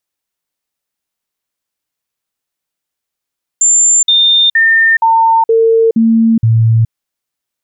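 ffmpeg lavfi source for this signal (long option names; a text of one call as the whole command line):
ffmpeg -f lavfi -i "aevalsrc='0.531*clip(min(mod(t,0.47),0.42-mod(t,0.47))/0.005,0,1)*sin(2*PI*7240*pow(2,-floor(t/0.47)/1)*mod(t,0.47))':duration=3.29:sample_rate=44100" out.wav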